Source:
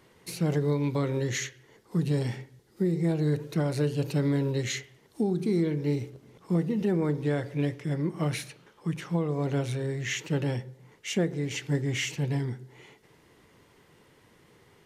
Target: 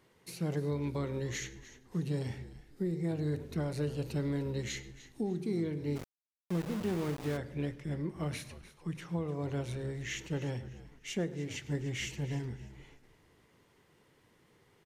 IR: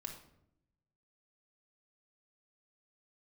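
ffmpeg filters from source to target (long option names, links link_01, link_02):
-filter_complex "[0:a]asplit=4[link_01][link_02][link_03][link_04];[link_02]adelay=300,afreqshift=-75,volume=-16dB[link_05];[link_03]adelay=600,afreqshift=-150,volume=-25.9dB[link_06];[link_04]adelay=900,afreqshift=-225,volume=-35.8dB[link_07];[link_01][link_05][link_06][link_07]amix=inputs=4:normalize=0,asplit=2[link_08][link_09];[1:a]atrim=start_sample=2205,adelay=102[link_10];[link_09][link_10]afir=irnorm=-1:irlink=0,volume=-16dB[link_11];[link_08][link_11]amix=inputs=2:normalize=0,asplit=3[link_12][link_13][link_14];[link_12]afade=type=out:start_time=5.95:duration=0.02[link_15];[link_13]aeval=exprs='val(0)*gte(abs(val(0)),0.0299)':channel_layout=same,afade=type=in:start_time=5.95:duration=0.02,afade=type=out:start_time=7.36:duration=0.02[link_16];[link_14]afade=type=in:start_time=7.36:duration=0.02[link_17];[link_15][link_16][link_17]amix=inputs=3:normalize=0,volume=-7.5dB"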